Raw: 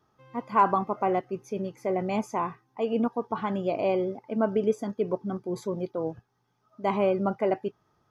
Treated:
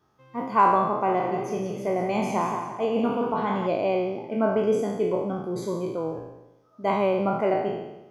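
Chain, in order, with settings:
peak hold with a decay on every bin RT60 0.97 s
0:00.92–0:03.67: feedback echo with a swinging delay time 175 ms, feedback 35%, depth 63 cents, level −7 dB

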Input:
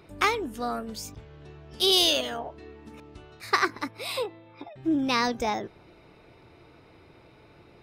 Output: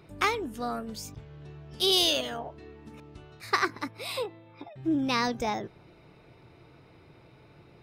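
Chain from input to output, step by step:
parametric band 140 Hz +6.5 dB 0.76 octaves
level −2.5 dB

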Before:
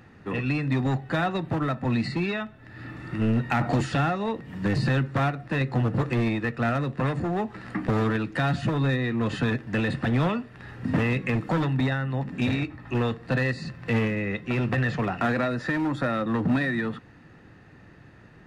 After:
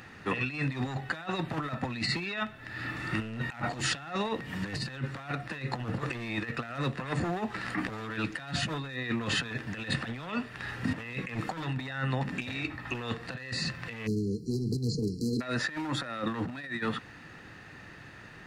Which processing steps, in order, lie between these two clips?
tilt shelving filter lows −6 dB
time-frequency box erased 0:14.06–0:15.41, 490–4,000 Hz
compressor whose output falls as the input rises −32 dBFS, ratio −0.5

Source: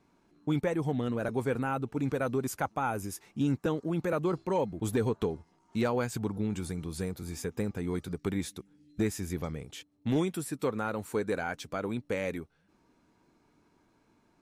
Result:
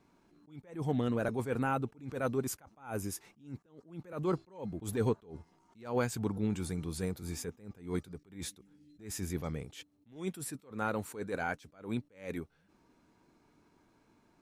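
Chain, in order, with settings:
level that may rise only so fast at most 150 dB per second

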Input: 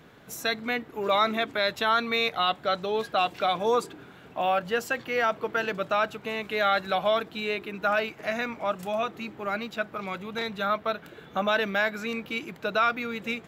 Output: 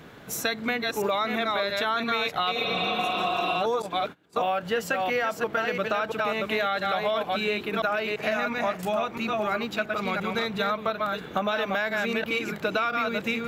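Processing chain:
delay that plays each chunk backwards 340 ms, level −4.5 dB
0:02.58–0:03.52: healed spectral selection 230–5,400 Hz both
in parallel at 0 dB: brickwall limiter −16.5 dBFS, peak gain reduction 7.5 dB
on the sum: downward compressor 6 to 1, threshold −23 dBFS, peak gain reduction 9.5 dB
0:03.82–0:04.53: noise gate −33 dBFS, range −25 dB

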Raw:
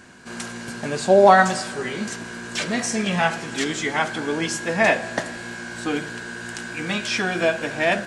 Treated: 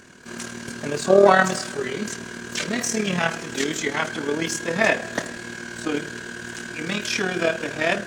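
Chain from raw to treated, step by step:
amplitude modulation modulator 38 Hz, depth 45%
pitch-shifted copies added +12 semitones −18 dB
thirty-one-band graphic EQ 400 Hz +4 dB, 800 Hz −6 dB, 6,300 Hz +4 dB
level +1.5 dB

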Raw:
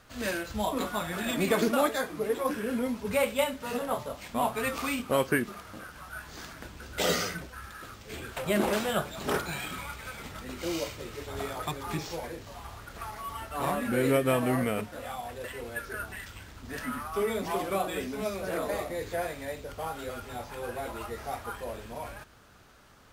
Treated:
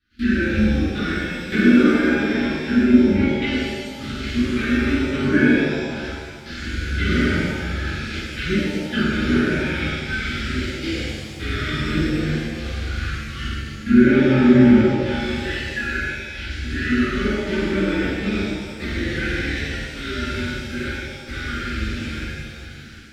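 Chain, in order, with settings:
Butterworth low-pass 5,000 Hz
flutter between parallel walls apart 7.8 metres, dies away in 0.55 s
in parallel at −4.5 dB: floating-point word with a short mantissa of 2 bits
on the sum: gate pattern ".xxx.x..xxxxx" 79 BPM −24 dB
elliptic band-stop filter 350–1,500 Hz, stop band 40 dB
treble cut that deepens with the level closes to 1,200 Hz, closed at −27 dBFS
reverb with rising layers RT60 1.6 s, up +7 semitones, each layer −8 dB, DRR −11.5 dB

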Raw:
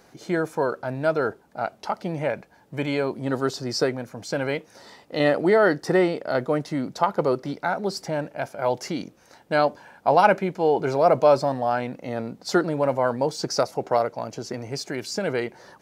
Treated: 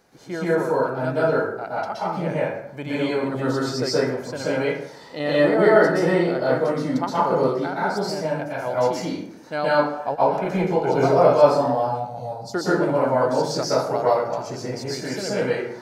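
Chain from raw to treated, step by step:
0:10.14–0:11.03: compressor whose output falls as the input rises −23 dBFS, ratio −0.5
0:11.71–0:12.54: drawn EQ curve 140 Hz 0 dB, 310 Hz −21 dB, 800 Hz +7 dB, 1,800 Hz −27 dB, 4,600 Hz −2 dB
convolution reverb RT60 0.75 s, pre-delay 112 ms, DRR −8 dB
level −6 dB

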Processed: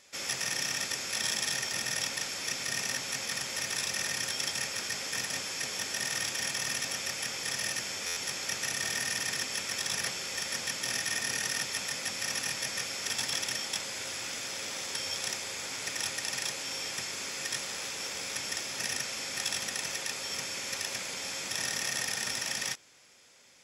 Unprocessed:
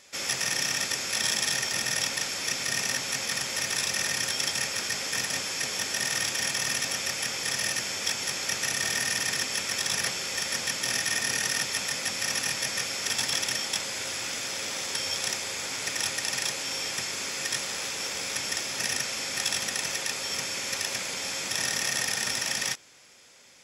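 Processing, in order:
buffer that repeats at 0:08.06, samples 512, times 8
level −4.5 dB

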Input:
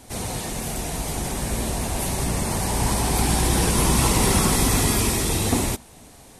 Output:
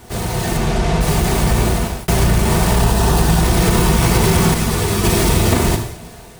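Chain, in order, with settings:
each half-wave held at its own peak
0:00.57–0:01.01: Bessel low-pass filter 4,800 Hz, order 2
0:02.78–0:03.41: notch filter 2,200 Hz, Q 5.8
reverb whose tail is shaped and stops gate 240 ms falling, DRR 4.5 dB
0:01.65–0:02.08: fade out
downward compressor, threshold −16 dBFS, peak gain reduction 7.5 dB
notch comb filter 270 Hz
automatic gain control gain up to 5 dB
0:04.54–0:05.04: string-ensemble chorus
level +2 dB

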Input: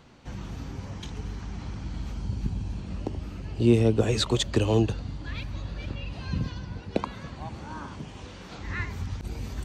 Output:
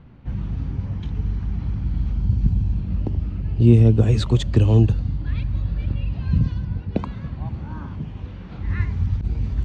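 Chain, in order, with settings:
low-pass that shuts in the quiet parts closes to 2,700 Hz, open at −20.5 dBFS
bass and treble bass +14 dB, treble −5 dB
level −2 dB

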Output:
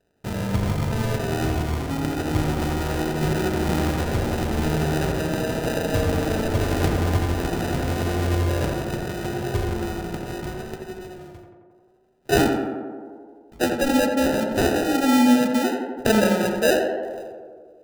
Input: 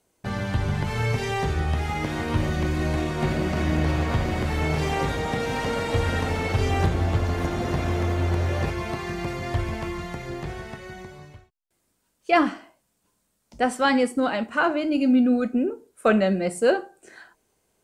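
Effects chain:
decimation without filtering 40×
tape delay 86 ms, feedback 82%, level −3 dB, low-pass 1,800 Hz

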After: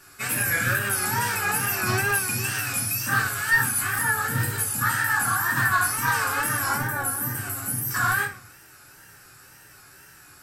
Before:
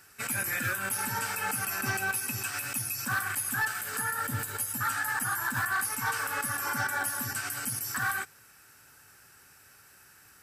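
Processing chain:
0:03.19–0:03.97: reverse
0:06.76–0:07.91: drawn EQ curve 420 Hz 0 dB, 5,100 Hz −12 dB, 12,000 Hz +1 dB
rectangular room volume 56 cubic metres, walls mixed, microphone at 1 metre
tape wow and flutter 93 cents
level +2 dB

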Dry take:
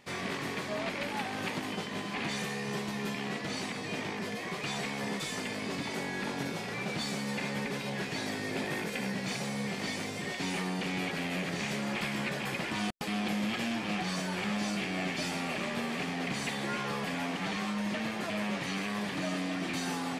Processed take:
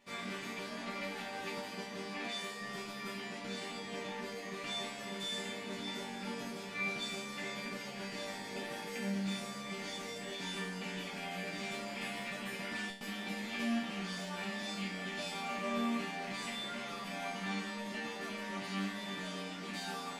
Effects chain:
0:02.18–0:02.61: high-pass filter 200 Hz
resonators tuned to a chord G3 minor, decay 0.46 s
level +12.5 dB

